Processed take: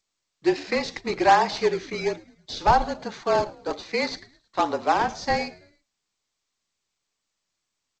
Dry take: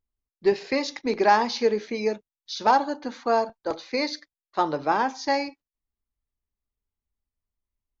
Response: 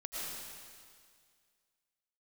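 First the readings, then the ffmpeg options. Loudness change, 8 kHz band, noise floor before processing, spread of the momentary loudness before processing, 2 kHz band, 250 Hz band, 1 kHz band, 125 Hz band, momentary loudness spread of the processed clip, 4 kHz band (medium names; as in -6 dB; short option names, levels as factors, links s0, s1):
+0.5 dB, no reading, under -85 dBFS, 12 LU, +1.5 dB, -0.5 dB, +1.0 dB, +6.5 dB, 13 LU, +0.5 dB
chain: -filter_complex "[0:a]acrossover=split=3500[s0][s1];[s1]acompressor=threshold=0.0126:ratio=4:attack=1:release=60[s2];[s0][s2]amix=inputs=2:normalize=0,highpass=f=670:p=1,equalizer=f=1500:w=3.2:g=-2,asplit=2[s3][s4];[s4]acrusher=samples=31:mix=1:aa=0.000001:lfo=1:lforange=49.6:lforate=1.2,volume=0.316[s5];[s3][s5]amix=inputs=2:normalize=0,afreqshift=-35,asplit=4[s6][s7][s8][s9];[s7]adelay=108,afreqshift=-77,volume=0.075[s10];[s8]adelay=216,afreqshift=-154,volume=0.0351[s11];[s9]adelay=324,afreqshift=-231,volume=0.0166[s12];[s6][s10][s11][s12]amix=inputs=4:normalize=0,volume=1.41" -ar 16000 -c:a g722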